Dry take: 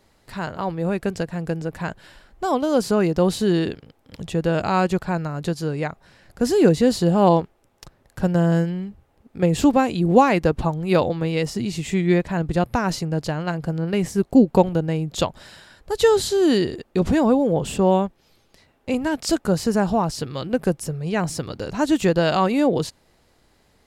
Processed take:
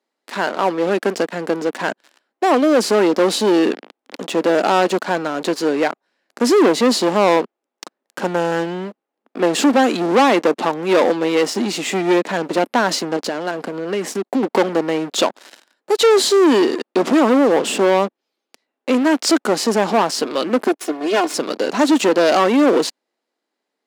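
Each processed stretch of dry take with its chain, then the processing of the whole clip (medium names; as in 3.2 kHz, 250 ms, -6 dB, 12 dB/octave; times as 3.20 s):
13.16–14.43 s: expander -34 dBFS + high-pass 50 Hz + compression, threshold -25 dBFS
20.67–21.34 s: comb filter that takes the minimum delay 2.8 ms + valve stage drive 20 dB, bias 0.6
whole clip: waveshaping leveller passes 5; steep high-pass 240 Hz 36 dB/octave; treble shelf 11 kHz -11.5 dB; trim -6.5 dB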